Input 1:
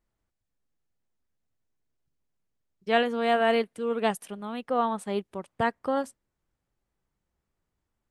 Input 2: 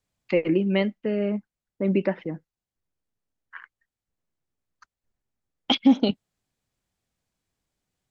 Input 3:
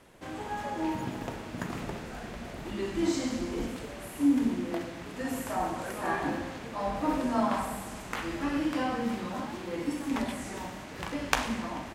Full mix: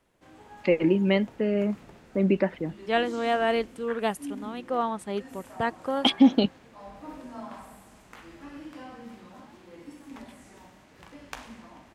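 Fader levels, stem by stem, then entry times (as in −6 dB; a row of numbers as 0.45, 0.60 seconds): −1.5, 0.0, −13.0 decibels; 0.00, 0.35, 0.00 seconds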